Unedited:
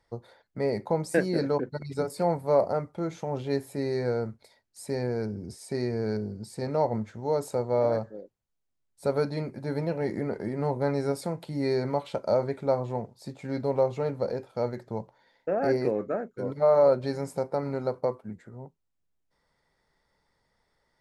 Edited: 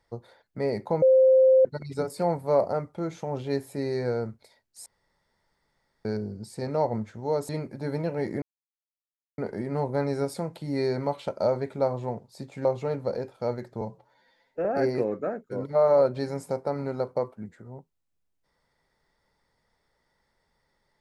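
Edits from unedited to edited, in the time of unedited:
0:01.02–0:01.65: beep over 523 Hz −14 dBFS
0:04.86–0:06.05: fill with room tone
0:07.49–0:09.32: remove
0:10.25: splice in silence 0.96 s
0:13.52–0:13.80: remove
0:14.96–0:15.52: time-stretch 1.5×

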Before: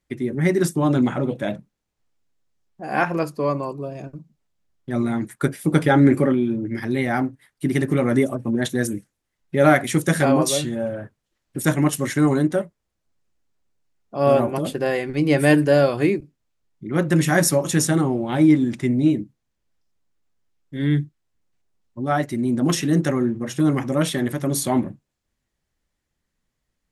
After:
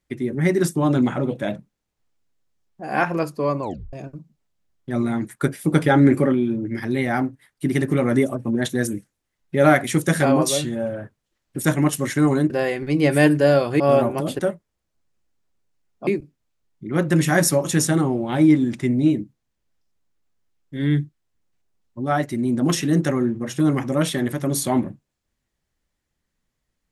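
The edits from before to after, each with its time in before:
0:03.62: tape stop 0.31 s
0:12.50–0:14.18: swap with 0:14.77–0:16.07

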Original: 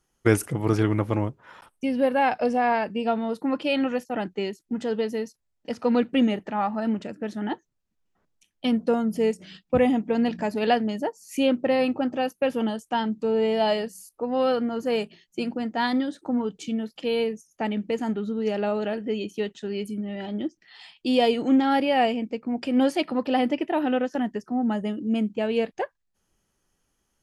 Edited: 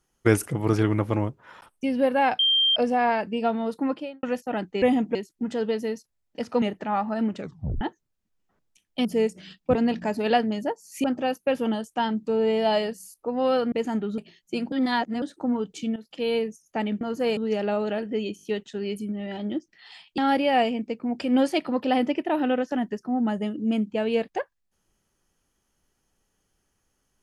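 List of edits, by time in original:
0:02.39: insert tone 3,170 Hz −17.5 dBFS 0.37 s
0:03.46–0:03.86: fade out and dull
0:05.92–0:06.28: remove
0:07.04: tape stop 0.43 s
0:08.71–0:09.09: remove
0:09.79–0:10.12: move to 0:04.45
0:11.41–0:11.99: remove
0:14.67–0:15.03: swap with 0:17.86–0:18.32
0:15.57–0:16.07: reverse
0:16.81–0:17.26: fade in equal-power, from −12.5 dB
0:19.32: stutter 0.02 s, 4 plays
0:21.07–0:21.61: remove

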